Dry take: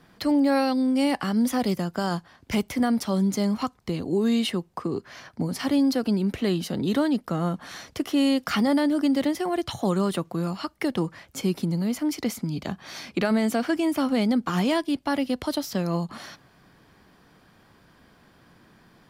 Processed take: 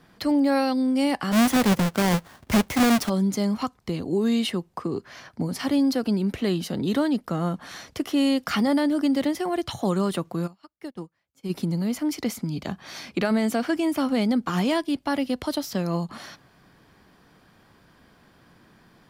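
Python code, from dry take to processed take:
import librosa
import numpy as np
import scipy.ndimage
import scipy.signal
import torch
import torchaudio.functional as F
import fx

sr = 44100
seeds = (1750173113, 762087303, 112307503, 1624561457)

y = fx.halfwave_hold(x, sr, at=(1.31, 3.08), fade=0.02)
y = fx.upward_expand(y, sr, threshold_db=-36.0, expansion=2.5, at=(10.46, 11.49), fade=0.02)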